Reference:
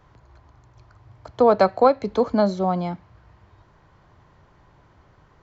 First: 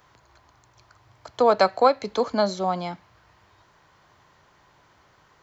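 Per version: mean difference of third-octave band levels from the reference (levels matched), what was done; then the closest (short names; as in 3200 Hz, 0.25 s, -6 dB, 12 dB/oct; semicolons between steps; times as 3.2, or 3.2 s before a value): 3.5 dB: tilt +3 dB/oct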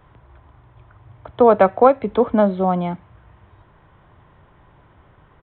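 1.0 dB: downsampling 8000 Hz; gain +3.5 dB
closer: second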